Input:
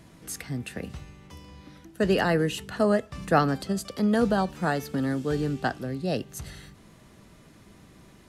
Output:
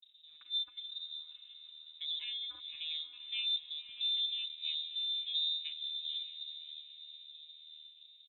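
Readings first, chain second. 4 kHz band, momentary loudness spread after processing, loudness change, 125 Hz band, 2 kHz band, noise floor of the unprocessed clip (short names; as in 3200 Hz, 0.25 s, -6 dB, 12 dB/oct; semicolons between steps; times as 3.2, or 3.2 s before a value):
+8.5 dB, 18 LU, -9.0 dB, under -40 dB, -19.5 dB, -54 dBFS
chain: arpeggiated vocoder bare fifth, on D#3, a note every 0.444 s; notches 50/100/150/200 Hz; spectral gate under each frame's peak -25 dB strong; comb 0.8 ms, depth 79%; compressor 1.5:1, threshold -35 dBFS, peak gain reduction 8 dB; flange 0.48 Hz, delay 1 ms, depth 6 ms, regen +57%; backlash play -51 dBFS; air absorption 160 m; diffused feedback echo 0.569 s, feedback 52%, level -10.5 dB; inverted band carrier 3800 Hz; gain -3.5 dB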